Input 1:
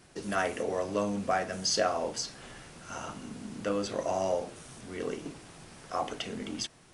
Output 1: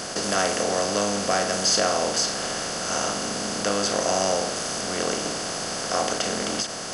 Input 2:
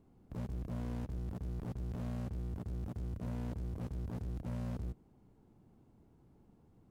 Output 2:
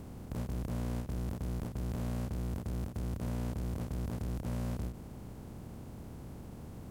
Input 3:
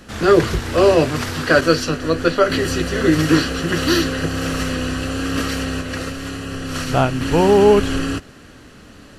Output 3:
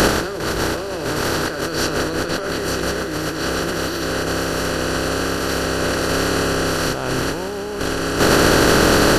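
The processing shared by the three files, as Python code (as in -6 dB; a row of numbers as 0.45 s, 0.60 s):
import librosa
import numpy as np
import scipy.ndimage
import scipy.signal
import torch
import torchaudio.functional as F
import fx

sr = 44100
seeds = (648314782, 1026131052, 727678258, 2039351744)

y = fx.bin_compress(x, sr, power=0.4)
y = fx.over_compress(y, sr, threshold_db=-22.0, ratio=-1.0)
y = fx.high_shelf(y, sr, hz=5800.0, db=10.0)
y = fx.end_taper(y, sr, db_per_s=130.0)
y = y * 10.0 ** (1.0 / 20.0)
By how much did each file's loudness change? +9.0 LU, +2.5 LU, -1.5 LU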